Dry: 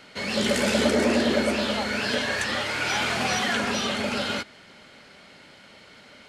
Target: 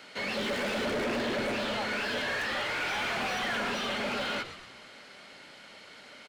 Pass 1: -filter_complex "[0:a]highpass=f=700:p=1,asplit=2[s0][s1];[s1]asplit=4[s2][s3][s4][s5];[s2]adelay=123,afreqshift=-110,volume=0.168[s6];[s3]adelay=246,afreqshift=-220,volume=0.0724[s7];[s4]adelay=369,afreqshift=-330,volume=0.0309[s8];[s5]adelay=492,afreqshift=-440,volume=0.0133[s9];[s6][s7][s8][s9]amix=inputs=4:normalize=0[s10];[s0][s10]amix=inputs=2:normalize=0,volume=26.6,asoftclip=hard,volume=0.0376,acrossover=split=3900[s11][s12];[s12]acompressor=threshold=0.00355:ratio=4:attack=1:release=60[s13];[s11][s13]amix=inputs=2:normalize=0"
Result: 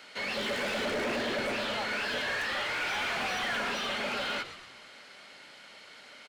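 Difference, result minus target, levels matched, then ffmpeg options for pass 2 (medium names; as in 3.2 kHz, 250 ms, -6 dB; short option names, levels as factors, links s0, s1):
250 Hz band -3.0 dB
-filter_complex "[0:a]highpass=f=330:p=1,asplit=2[s0][s1];[s1]asplit=4[s2][s3][s4][s5];[s2]adelay=123,afreqshift=-110,volume=0.168[s6];[s3]adelay=246,afreqshift=-220,volume=0.0724[s7];[s4]adelay=369,afreqshift=-330,volume=0.0309[s8];[s5]adelay=492,afreqshift=-440,volume=0.0133[s9];[s6][s7][s8][s9]amix=inputs=4:normalize=0[s10];[s0][s10]amix=inputs=2:normalize=0,volume=26.6,asoftclip=hard,volume=0.0376,acrossover=split=3900[s11][s12];[s12]acompressor=threshold=0.00355:ratio=4:attack=1:release=60[s13];[s11][s13]amix=inputs=2:normalize=0"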